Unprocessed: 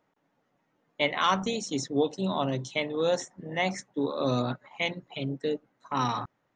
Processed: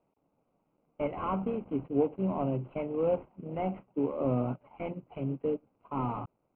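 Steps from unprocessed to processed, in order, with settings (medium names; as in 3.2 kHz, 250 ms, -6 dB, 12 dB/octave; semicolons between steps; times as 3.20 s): CVSD coder 16 kbps; boxcar filter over 25 samples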